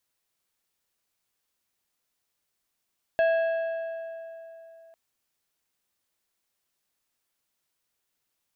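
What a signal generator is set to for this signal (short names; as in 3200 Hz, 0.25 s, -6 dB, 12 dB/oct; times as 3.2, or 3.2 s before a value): metal hit plate, length 1.75 s, lowest mode 659 Hz, modes 5, decay 3.26 s, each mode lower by 9.5 dB, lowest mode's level -18.5 dB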